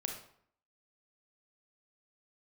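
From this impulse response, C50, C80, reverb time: 5.0 dB, 9.0 dB, 0.60 s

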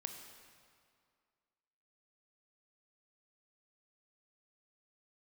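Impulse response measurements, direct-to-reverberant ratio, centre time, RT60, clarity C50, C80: 4.5 dB, 43 ms, 2.2 s, 6.0 dB, 7.0 dB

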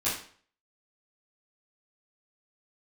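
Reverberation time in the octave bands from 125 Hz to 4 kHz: 0.50, 0.45, 0.50, 0.50, 0.45, 0.45 seconds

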